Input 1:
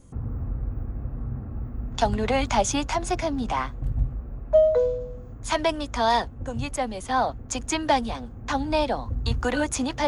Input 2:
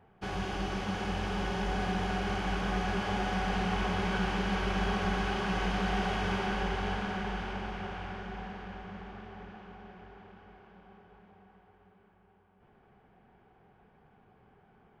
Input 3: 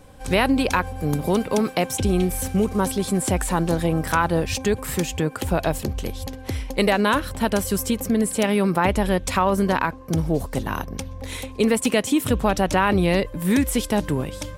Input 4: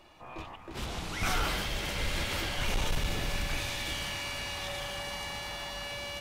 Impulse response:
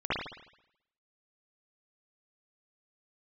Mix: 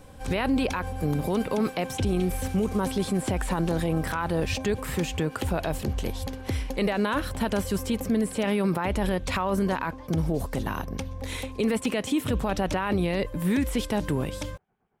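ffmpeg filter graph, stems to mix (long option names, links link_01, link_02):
-filter_complex "[0:a]volume=-14.5dB[link_01];[1:a]volume=-10dB[link_02];[2:a]acrossover=split=4200[link_03][link_04];[link_04]acompressor=threshold=-37dB:ratio=4:attack=1:release=60[link_05];[link_03][link_05]amix=inputs=2:normalize=0,volume=-1dB[link_06];[3:a]adelay=850,volume=-8dB[link_07];[link_01][link_02][link_07]amix=inputs=3:normalize=0,acrossover=split=2300[link_08][link_09];[link_08]aeval=exprs='val(0)*(1-0.7/2+0.7/2*cos(2*PI*8.9*n/s))':channel_layout=same[link_10];[link_09]aeval=exprs='val(0)*(1-0.7/2-0.7/2*cos(2*PI*8.9*n/s))':channel_layout=same[link_11];[link_10][link_11]amix=inputs=2:normalize=0,acompressor=threshold=-49dB:ratio=6,volume=0dB[link_12];[link_06][link_12]amix=inputs=2:normalize=0,alimiter=limit=-17dB:level=0:latency=1:release=26"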